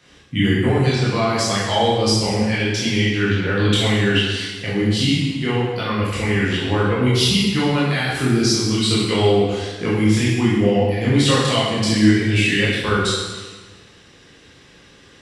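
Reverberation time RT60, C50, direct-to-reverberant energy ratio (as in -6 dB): 1.3 s, -1.0 dB, -8.5 dB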